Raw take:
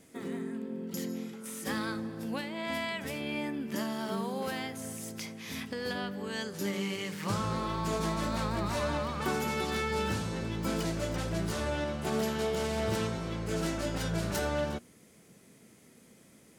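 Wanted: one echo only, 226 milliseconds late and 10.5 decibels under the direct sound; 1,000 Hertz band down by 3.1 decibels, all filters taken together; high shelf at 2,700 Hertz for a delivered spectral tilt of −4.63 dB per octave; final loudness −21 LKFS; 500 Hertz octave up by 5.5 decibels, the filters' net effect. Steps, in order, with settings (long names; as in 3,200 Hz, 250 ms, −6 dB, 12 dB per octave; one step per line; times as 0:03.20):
parametric band 500 Hz +8.5 dB
parametric band 1,000 Hz −7.5 dB
high-shelf EQ 2,700 Hz +4.5 dB
single-tap delay 226 ms −10.5 dB
level +10 dB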